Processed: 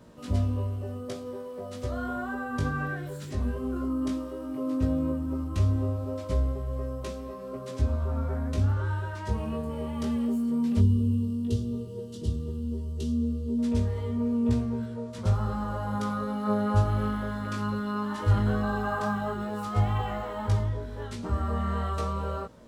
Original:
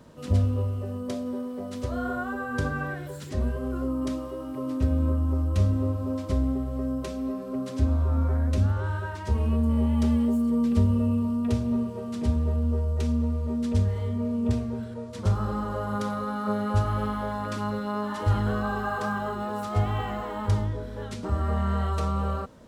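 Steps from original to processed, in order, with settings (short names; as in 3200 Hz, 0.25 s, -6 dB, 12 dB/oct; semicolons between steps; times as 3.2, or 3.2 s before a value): spectral gain 10.79–13.59, 490–2700 Hz -15 dB; chorus 0.14 Hz, delay 17 ms, depth 3 ms; gain +1.5 dB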